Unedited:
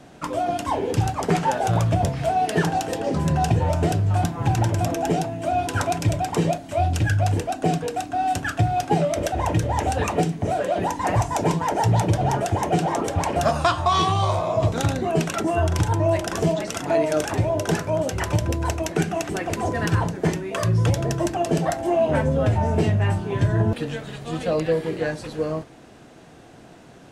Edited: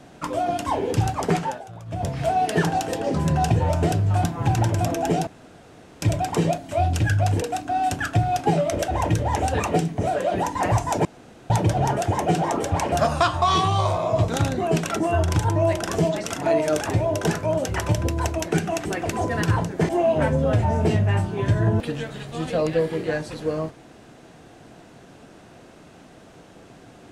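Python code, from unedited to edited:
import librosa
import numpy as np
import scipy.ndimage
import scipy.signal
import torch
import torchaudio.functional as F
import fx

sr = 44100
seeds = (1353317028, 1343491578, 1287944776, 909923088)

y = fx.edit(x, sr, fx.fade_down_up(start_s=1.29, length_s=0.92, db=-19.5, fade_s=0.36),
    fx.room_tone_fill(start_s=5.27, length_s=0.75),
    fx.cut(start_s=7.42, length_s=0.44),
    fx.room_tone_fill(start_s=11.49, length_s=0.45),
    fx.cut(start_s=20.33, length_s=1.49), tone=tone)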